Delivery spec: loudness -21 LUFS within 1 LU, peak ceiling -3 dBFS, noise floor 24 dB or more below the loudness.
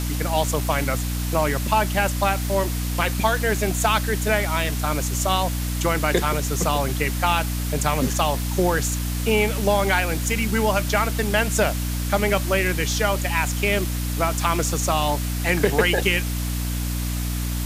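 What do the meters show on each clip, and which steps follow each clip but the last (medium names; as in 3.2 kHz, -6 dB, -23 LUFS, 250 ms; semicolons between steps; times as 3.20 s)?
hum 60 Hz; highest harmonic 300 Hz; hum level -23 dBFS; noise floor -26 dBFS; noise floor target -46 dBFS; loudness -22.0 LUFS; peak level -4.5 dBFS; loudness target -21.0 LUFS
-> hum notches 60/120/180/240/300 Hz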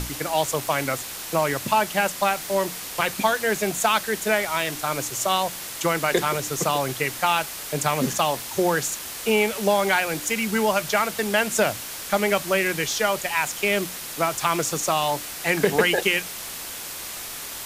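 hum not found; noise floor -35 dBFS; noise floor target -48 dBFS
-> noise reduction 13 dB, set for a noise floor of -35 dBFS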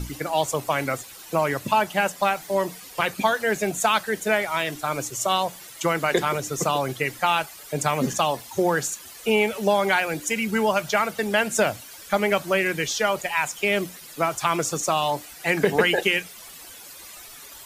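noise floor -43 dBFS; noise floor target -48 dBFS
-> noise reduction 6 dB, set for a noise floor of -43 dBFS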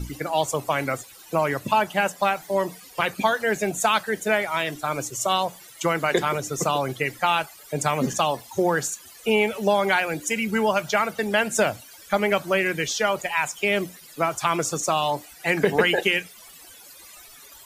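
noise floor -47 dBFS; noise floor target -48 dBFS
-> noise reduction 6 dB, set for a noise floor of -47 dBFS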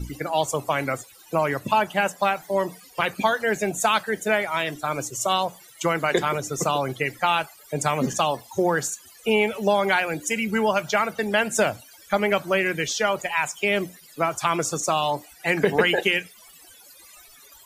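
noise floor -50 dBFS; loudness -24.0 LUFS; peak level -7.0 dBFS; loudness target -21.0 LUFS
-> trim +3 dB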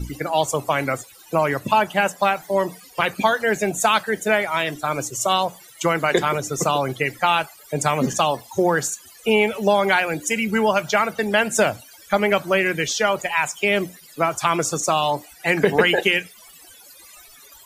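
loudness -21.0 LUFS; peak level -4.0 dBFS; noise floor -47 dBFS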